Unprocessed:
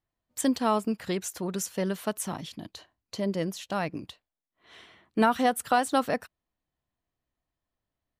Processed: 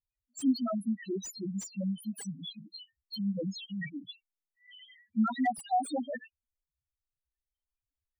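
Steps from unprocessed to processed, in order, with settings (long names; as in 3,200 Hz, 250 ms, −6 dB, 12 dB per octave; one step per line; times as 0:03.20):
high shelf with overshoot 1,600 Hz +11 dB, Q 1.5
spectral peaks only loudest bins 1
slew-rate limiting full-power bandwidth 42 Hz
level +4 dB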